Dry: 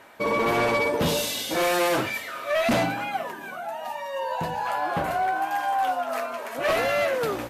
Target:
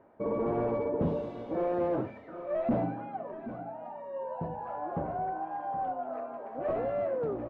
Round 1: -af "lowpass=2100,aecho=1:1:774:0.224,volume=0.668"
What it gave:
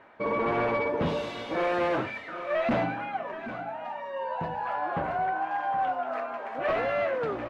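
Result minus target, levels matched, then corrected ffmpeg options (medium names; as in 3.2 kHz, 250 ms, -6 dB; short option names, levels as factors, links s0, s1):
2 kHz band +13.0 dB
-af "lowpass=600,aecho=1:1:774:0.224,volume=0.668"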